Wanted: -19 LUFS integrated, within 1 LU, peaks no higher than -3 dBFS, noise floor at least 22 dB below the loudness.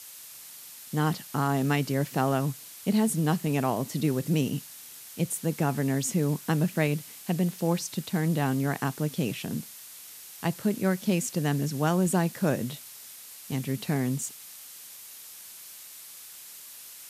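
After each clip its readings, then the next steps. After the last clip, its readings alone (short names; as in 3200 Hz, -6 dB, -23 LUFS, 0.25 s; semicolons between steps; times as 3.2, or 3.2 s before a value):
noise floor -46 dBFS; noise floor target -50 dBFS; loudness -28.0 LUFS; peak -11.5 dBFS; loudness target -19.0 LUFS
-> noise print and reduce 6 dB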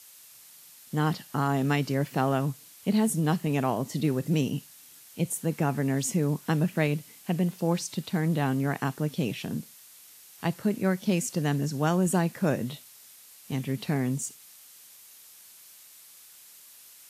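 noise floor -52 dBFS; loudness -28.5 LUFS; peak -11.5 dBFS; loudness target -19.0 LUFS
-> gain +9.5 dB; limiter -3 dBFS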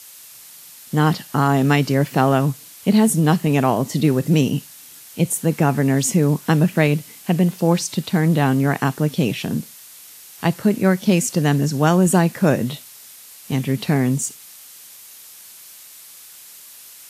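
loudness -19.0 LUFS; peak -3.0 dBFS; noise floor -43 dBFS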